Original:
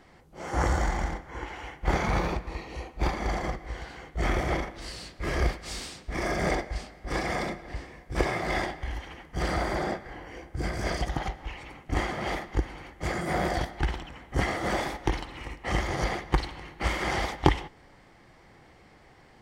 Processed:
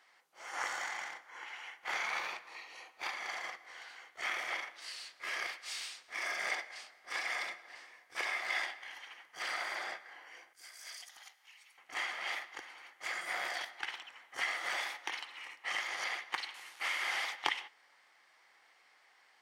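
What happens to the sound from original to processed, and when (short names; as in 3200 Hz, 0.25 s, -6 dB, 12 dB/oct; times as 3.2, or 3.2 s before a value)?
10.53–11.78 pre-emphasis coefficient 0.9
16.54–17.24 delta modulation 64 kbps, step -41 dBFS
whole clip: HPF 1200 Hz 12 dB/oct; notch 7600 Hz, Q 23; dynamic EQ 2600 Hz, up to +5 dB, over -47 dBFS, Q 1.3; gain -4.5 dB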